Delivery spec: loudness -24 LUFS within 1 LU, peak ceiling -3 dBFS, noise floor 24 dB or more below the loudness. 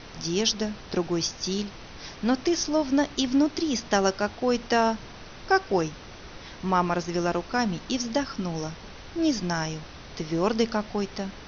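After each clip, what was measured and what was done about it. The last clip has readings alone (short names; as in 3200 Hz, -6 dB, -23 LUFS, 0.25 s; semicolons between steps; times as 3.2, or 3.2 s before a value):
noise floor -44 dBFS; noise floor target -51 dBFS; loudness -26.5 LUFS; peak -8.5 dBFS; loudness target -24.0 LUFS
-> noise print and reduce 7 dB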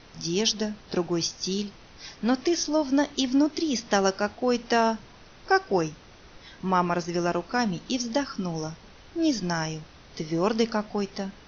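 noise floor -51 dBFS; loudness -26.5 LUFS; peak -8.5 dBFS; loudness target -24.0 LUFS
-> gain +2.5 dB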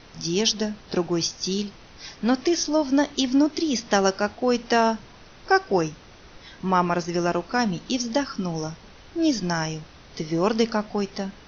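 loudness -24.0 LUFS; peak -6.0 dBFS; noise floor -48 dBFS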